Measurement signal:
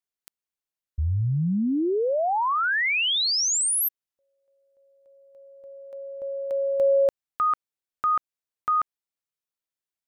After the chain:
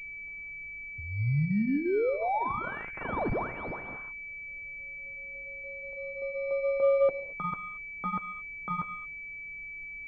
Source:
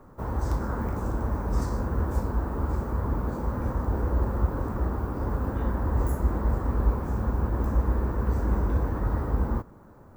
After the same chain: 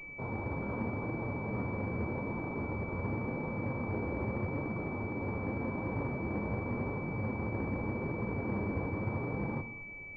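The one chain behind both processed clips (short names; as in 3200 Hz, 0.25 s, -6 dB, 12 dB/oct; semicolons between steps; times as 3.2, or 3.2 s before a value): HPF 98 Hz 24 dB/oct; flange 0.85 Hz, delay 5.7 ms, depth 5.7 ms, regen -43%; added noise brown -58 dBFS; non-linear reverb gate 0.25 s flat, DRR 11 dB; pulse-width modulation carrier 2300 Hz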